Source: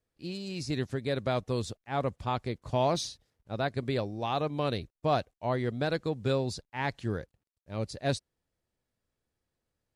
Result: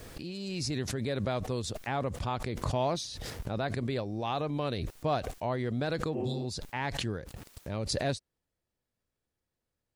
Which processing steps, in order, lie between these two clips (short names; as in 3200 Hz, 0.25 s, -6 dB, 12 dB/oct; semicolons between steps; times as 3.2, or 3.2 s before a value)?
spectral repair 6.17–6.41, 200–3200 Hz after; backwards sustainer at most 22 dB/s; gain -3 dB